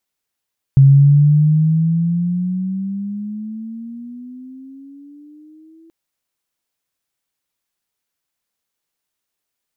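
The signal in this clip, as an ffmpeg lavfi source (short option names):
-f lavfi -i "aevalsrc='pow(10,(-4-39*t/5.13)/20)*sin(2*PI*135*5.13/(15.5*log(2)/12)*(exp(15.5*log(2)/12*t/5.13)-1))':d=5.13:s=44100"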